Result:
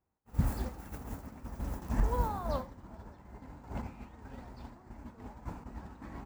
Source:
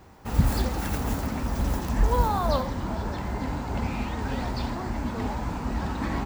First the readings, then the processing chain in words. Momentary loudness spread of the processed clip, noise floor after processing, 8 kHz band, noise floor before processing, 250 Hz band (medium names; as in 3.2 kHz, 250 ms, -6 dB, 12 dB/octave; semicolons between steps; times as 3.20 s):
17 LU, -57 dBFS, -14.5 dB, -33 dBFS, -12.5 dB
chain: expander -20 dBFS; peaking EQ 3.8 kHz -7 dB 1.4 oct; square tremolo 0.55 Hz, depth 60%, duty 10%